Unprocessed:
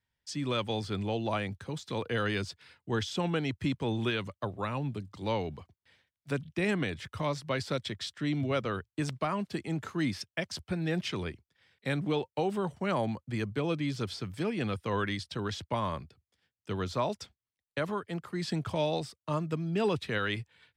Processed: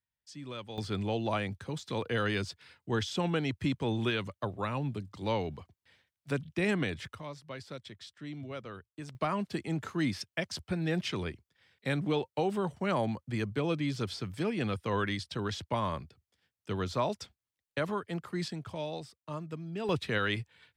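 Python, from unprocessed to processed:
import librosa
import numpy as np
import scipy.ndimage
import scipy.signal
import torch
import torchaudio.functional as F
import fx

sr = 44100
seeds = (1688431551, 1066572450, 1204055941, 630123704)

y = fx.gain(x, sr, db=fx.steps((0.0, -10.5), (0.78, 0.0), (7.15, -11.0), (9.15, 0.0), (18.48, -7.5), (19.89, 1.0)))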